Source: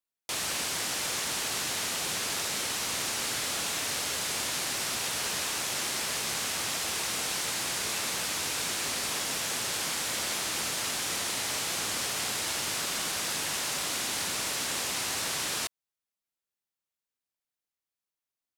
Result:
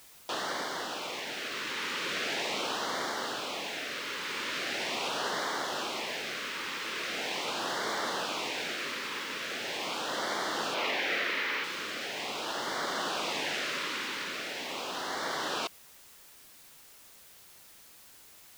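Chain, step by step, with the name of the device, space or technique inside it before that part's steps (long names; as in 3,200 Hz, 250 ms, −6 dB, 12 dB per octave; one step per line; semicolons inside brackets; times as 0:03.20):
shortwave radio (band-pass filter 280–2,800 Hz; amplitude tremolo 0.38 Hz, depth 46%; auto-filter notch sine 0.41 Hz 680–2,600 Hz; white noise bed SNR 19 dB)
0:10.74–0:11.64: octave-band graphic EQ 125/500/2,000/8,000 Hz −6/+4/+7/−8 dB
level +6.5 dB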